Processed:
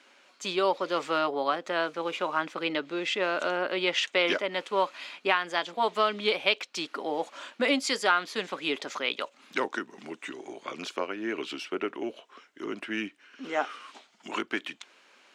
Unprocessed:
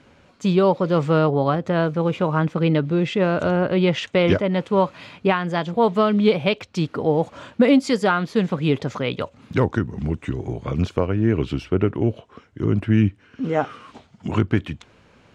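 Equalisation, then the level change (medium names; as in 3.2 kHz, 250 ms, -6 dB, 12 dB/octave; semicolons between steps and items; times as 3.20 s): high-pass 280 Hz 24 dB/octave; tilt shelf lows -7 dB; band-stop 470 Hz, Q 12; -4.5 dB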